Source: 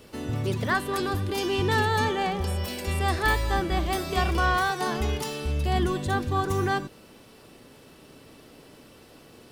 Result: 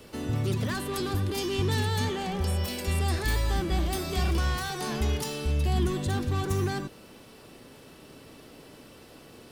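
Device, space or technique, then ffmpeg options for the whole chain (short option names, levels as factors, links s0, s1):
one-band saturation: -filter_complex "[0:a]acrossover=split=290|3400[s0][s1][s2];[s1]asoftclip=type=tanh:threshold=0.0188[s3];[s0][s3][s2]amix=inputs=3:normalize=0,volume=1.12"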